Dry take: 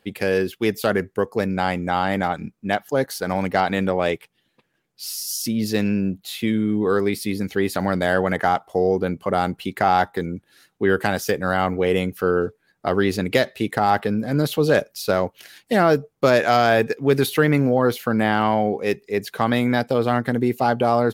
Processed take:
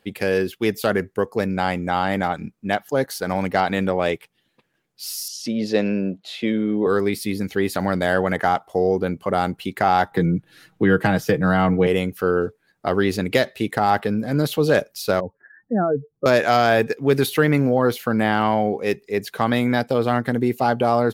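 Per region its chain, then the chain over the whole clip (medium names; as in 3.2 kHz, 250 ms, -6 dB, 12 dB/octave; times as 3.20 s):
5.28–6.87 s: band-pass 180–5000 Hz + peaking EQ 580 Hz +10 dB 0.64 oct
10.11–11.87 s: tone controls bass +8 dB, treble -7 dB + comb 6.3 ms, depth 50% + three bands compressed up and down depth 40%
15.20–16.26 s: spectral contrast enhancement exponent 2.1 + Chebyshev low-pass 1.8 kHz, order 8 + peaking EQ 570 Hz -6 dB 0.76 oct
whole clip: none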